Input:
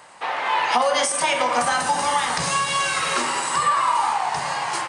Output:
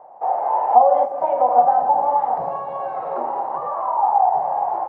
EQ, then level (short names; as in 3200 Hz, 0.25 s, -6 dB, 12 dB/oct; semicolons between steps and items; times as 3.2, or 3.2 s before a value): synth low-pass 760 Hz, resonance Q 5.7; bell 560 Hz +12.5 dB 2.3 oct; -14.0 dB